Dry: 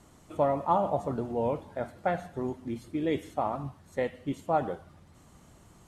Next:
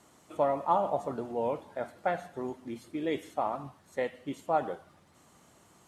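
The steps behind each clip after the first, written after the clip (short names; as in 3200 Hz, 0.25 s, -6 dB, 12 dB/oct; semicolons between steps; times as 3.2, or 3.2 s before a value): HPF 350 Hz 6 dB/oct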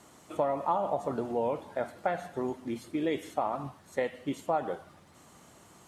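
compressor 3:1, threshold -31 dBFS, peak gain reduction 8.5 dB; gain +4.5 dB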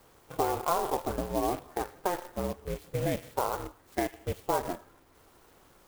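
ring modulator 180 Hz; in parallel at -7.5 dB: requantised 6-bit, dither none; on the sum: clock jitter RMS 0.045 ms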